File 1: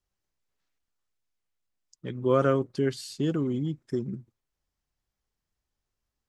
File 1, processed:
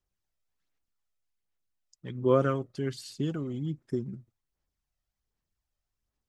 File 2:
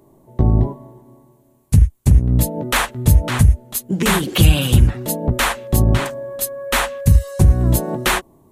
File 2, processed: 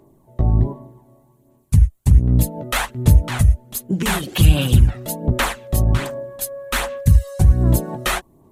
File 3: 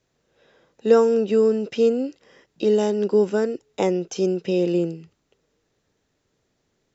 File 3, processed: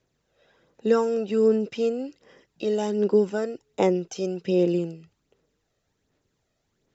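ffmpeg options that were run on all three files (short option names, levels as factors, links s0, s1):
-af "aphaser=in_gain=1:out_gain=1:delay=1.6:decay=0.43:speed=1.3:type=sinusoidal,volume=0.596"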